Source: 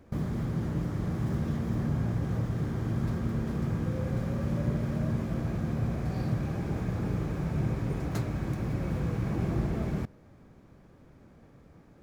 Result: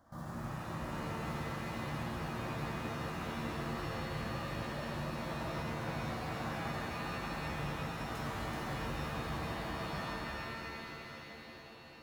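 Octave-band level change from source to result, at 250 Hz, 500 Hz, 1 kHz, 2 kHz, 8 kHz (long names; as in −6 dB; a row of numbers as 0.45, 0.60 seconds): −10.0 dB, −4.5 dB, +3.5 dB, +4.5 dB, can't be measured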